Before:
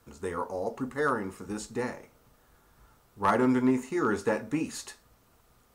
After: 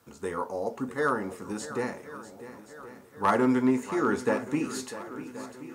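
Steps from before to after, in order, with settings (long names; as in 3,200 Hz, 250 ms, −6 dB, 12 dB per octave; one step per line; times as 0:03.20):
high-pass filter 110 Hz 12 dB per octave
on a send: feedback echo with a long and a short gap by turns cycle 1,077 ms, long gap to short 1.5 to 1, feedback 49%, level −14 dB
on the sum: level +1 dB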